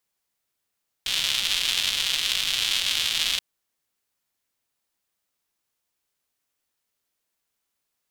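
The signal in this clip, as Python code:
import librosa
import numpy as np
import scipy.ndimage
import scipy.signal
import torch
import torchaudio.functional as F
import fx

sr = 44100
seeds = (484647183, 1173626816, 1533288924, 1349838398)

y = fx.rain(sr, seeds[0], length_s=2.33, drops_per_s=280.0, hz=3300.0, bed_db=-21.0)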